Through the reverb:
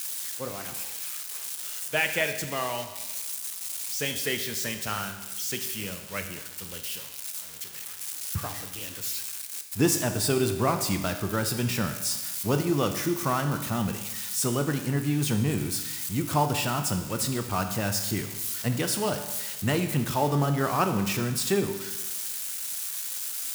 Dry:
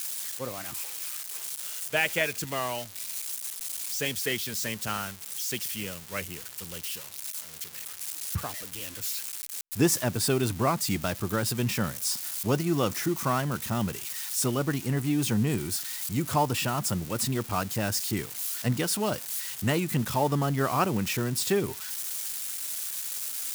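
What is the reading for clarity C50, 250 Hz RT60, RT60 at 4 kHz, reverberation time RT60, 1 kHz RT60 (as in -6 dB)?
9.0 dB, 1.1 s, 1.1 s, 1.1 s, 1.1 s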